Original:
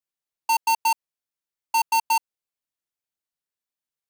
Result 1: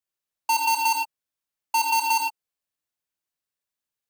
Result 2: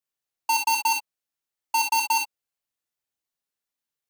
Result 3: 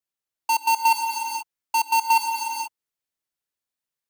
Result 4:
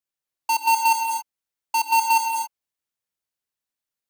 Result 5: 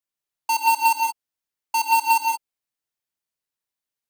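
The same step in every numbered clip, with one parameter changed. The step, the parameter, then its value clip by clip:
reverb whose tail is shaped and stops, gate: 130, 80, 510, 300, 200 milliseconds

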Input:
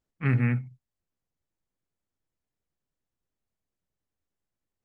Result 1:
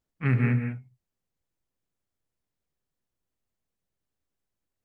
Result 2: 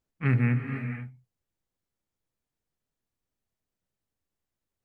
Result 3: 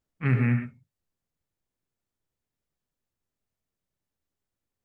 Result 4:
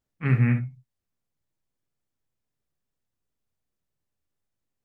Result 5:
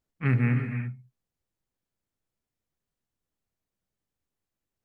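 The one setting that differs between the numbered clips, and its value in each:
reverb whose tail is shaped and stops, gate: 220, 530, 140, 80, 360 milliseconds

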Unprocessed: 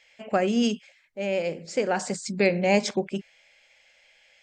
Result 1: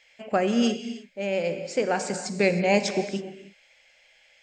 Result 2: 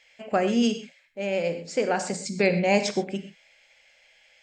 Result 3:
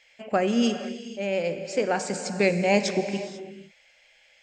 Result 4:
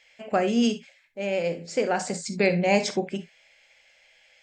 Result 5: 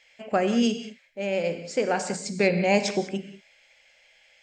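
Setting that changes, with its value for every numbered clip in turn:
reverb whose tail is shaped and stops, gate: 340, 150, 520, 90, 220 milliseconds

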